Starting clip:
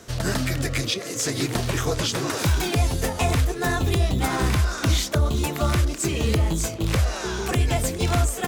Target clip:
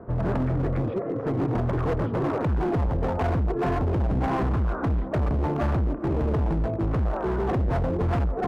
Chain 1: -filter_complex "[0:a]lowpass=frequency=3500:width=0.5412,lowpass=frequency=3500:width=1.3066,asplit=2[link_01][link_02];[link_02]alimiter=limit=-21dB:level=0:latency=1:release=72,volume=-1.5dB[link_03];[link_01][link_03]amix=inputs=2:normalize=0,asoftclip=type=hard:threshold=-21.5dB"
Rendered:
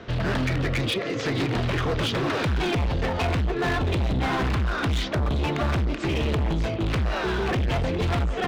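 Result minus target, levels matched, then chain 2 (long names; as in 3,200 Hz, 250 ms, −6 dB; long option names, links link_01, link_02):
4,000 Hz band +18.0 dB
-filter_complex "[0:a]lowpass=frequency=1100:width=0.5412,lowpass=frequency=1100:width=1.3066,asplit=2[link_01][link_02];[link_02]alimiter=limit=-21dB:level=0:latency=1:release=72,volume=-1.5dB[link_03];[link_01][link_03]amix=inputs=2:normalize=0,asoftclip=type=hard:threshold=-21.5dB"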